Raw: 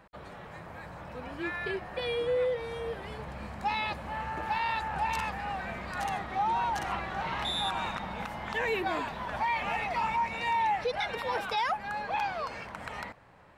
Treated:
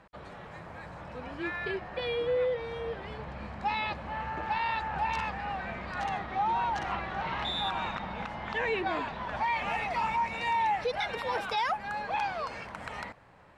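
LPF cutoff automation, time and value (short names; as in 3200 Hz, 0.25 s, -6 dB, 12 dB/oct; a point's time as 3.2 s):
0.96 s 8300 Hz
2.15 s 4800 Hz
9.2 s 4800 Hz
9.72 s 11000 Hz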